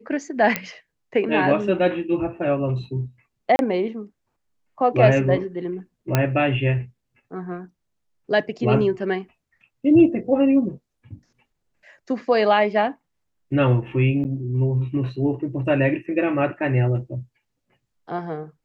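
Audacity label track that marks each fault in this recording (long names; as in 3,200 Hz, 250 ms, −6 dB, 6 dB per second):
0.560000	0.560000	click −6 dBFS
3.560000	3.590000	drop-out 31 ms
6.150000	6.150000	click −4 dBFS
14.240000	14.250000	drop-out 9.2 ms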